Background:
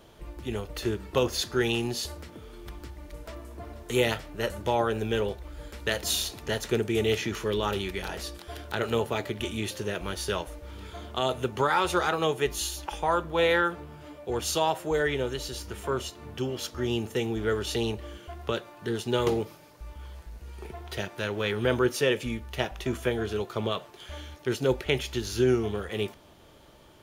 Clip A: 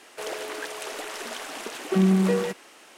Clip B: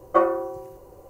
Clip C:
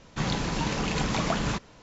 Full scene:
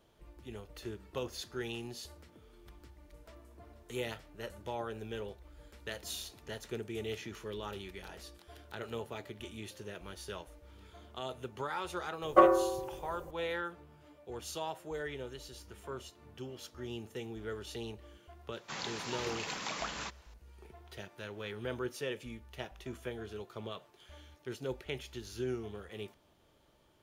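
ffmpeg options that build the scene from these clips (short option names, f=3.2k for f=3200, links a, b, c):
-filter_complex "[0:a]volume=-13.5dB[a];[2:a]acontrast=26[b];[3:a]highpass=f=1k:p=1[c];[b]atrim=end=1.09,asetpts=PTS-STARTPTS,volume=-7dB,afade=t=in:d=0.004:c=hsin,afade=t=out:st=1.086:d=0.004:c=hsin,adelay=12220[d];[c]atrim=end=1.82,asetpts=PTS-STARTPTS,volume=-6.5dB,afade=t=in:d=0.004:c=hsin,afade=t=out:st=1.816:d=0.004:c=hsin,adelay=18520[e];[a][d][e]amix=inputs=3:normalize=0"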